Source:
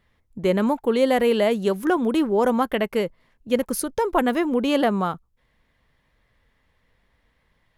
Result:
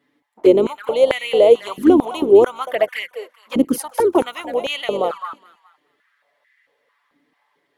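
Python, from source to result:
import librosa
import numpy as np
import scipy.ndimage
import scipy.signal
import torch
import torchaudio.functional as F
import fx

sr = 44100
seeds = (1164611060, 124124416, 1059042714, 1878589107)

p1 = fx.octave_divider(x, sr, octaves=2, level_db=3.0)
p2 = p1 + fx.echo_thinned(p1, sr, ms=207, feedback_pct=37, hz=1000.0, wet_db=-9, dry=0)
p3 = fx.env_flanger(p2, sr, rest_ms=7.1, full_db=-15.5)
p4 = fx.filter_held_highpass(p3, sr, hz=4.5, low_hz=280.0, high_hz=1900.0)
y = p4 * 10.0 ** (2.5 / 20.0)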